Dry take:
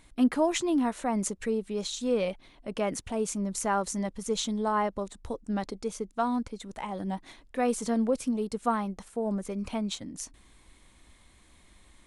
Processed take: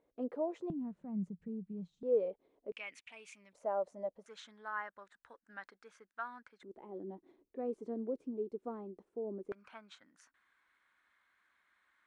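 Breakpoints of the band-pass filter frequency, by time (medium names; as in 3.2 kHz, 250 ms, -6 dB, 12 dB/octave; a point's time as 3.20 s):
band-pass filter, Q 5.1
490 Hz
from 0.70 s 170 Hz
from 2.03 s 450 Hz
from 2.72 s 2.4 kHz
from 3.53 s 600 Hz
from 4.26 s 1.6 kHz
from 6.63 s 370 Hz
from 9.52 s 1.5 kHz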